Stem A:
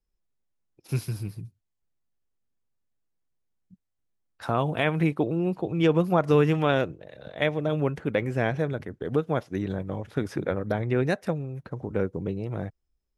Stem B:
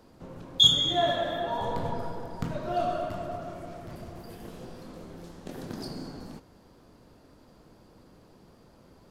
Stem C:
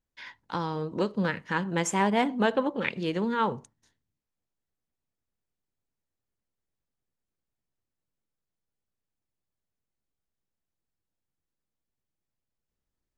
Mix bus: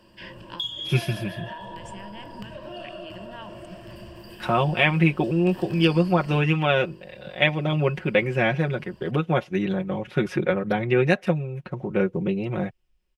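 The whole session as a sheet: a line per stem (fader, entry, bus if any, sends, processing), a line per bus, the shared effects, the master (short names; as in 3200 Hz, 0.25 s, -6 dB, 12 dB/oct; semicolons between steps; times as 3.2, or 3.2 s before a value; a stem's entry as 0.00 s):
-7.0 dB, 0.00 s, no bus, no send, high shelf 4900 Hz -7 dB; comb 5.5 ms, depth 87%; AGC gain up to 11.5 dB
-2.0 dB, 0.00 s, bus A, no send, dry
-5.0 dB, 0.00 s, bus A, no send, compressor, threshold -32 dBFS, peak gain reduction 12.5 dB
bus A: 0.0 dB, ripple EQ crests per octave 1.3, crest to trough 12 dB; compressor 10:1, threshold -35 dBFS, peak gain reduction 19.5 dB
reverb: off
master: bell 2700 Hz +11.5 dB 0.75 oct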